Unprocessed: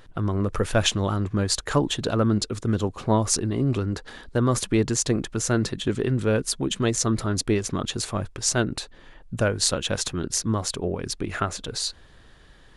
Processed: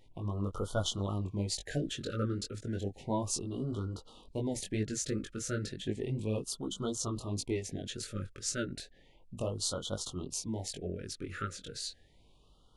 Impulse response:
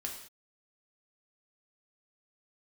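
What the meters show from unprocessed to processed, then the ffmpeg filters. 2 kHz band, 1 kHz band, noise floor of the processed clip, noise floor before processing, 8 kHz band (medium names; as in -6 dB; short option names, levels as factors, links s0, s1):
-14.5 dB, -13.5 dB, -62 dBFS, -51 dBFS, -11.5 dB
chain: -af "flanger=delay=19:depth=2.9:speed=2.7,afftfilt=real='re*(1-between(b*sr/1024,820*pow(2100/820,0.5+0.5*sin(2*PI*0.33*pts/sr))/1.41,820*pow(2100/820,0.5+0.5*sin(2*PI*0.33*pts/sr))*1.41))':imag='im*(1-between(b*sr/1024,820*pow(2100/820,0.5+0.5*sin(2*PI*0.33*pts/sr))/1.41,820*pow(2100/820,0.5+0.5*sin(2*PI*0.33*pts/sr))*1.41))':win_size=1024:overlap=0.75,volume=0.376"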